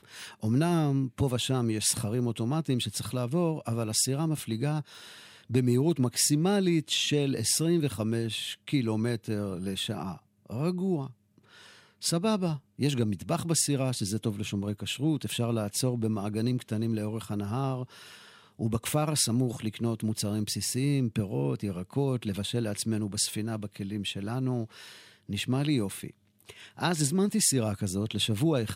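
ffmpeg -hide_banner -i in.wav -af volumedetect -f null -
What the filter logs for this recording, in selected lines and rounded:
mean_volume: -29.4 dB
max_volume: -11.0 dB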